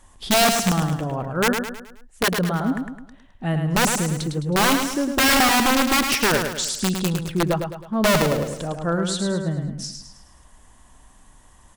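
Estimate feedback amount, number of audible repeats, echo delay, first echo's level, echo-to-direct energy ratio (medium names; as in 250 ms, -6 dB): 44%, 5, 106 ms, -6.0 dB, -5.0 dB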